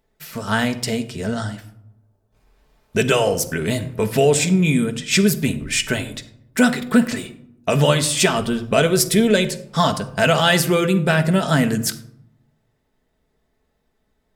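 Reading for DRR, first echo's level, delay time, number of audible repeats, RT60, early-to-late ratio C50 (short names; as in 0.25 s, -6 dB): 6.0 dB, none, none, none, 0.75 s, 14.0 dB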